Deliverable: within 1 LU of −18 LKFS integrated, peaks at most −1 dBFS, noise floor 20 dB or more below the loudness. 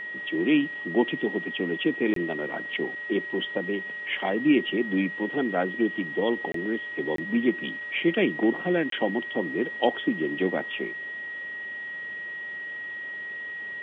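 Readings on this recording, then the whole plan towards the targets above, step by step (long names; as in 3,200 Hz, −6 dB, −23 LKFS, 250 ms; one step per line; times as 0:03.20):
number of dropouts 4; longest dropout 23 ms; interfering tone 1,900 Hz; level of the tone −33 dBFS; integrated loudness −27.5 LKFS; sample peak −8.0 dBFS; target loudness −18.0 LKFS
→ repair the gap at 0:02.14/0:06.52/0:07.16/0:08.90, 23 ms
notch filter 1,900 Hz, Q 30
level +9.5 dB
brickwall limiter −1 dBFS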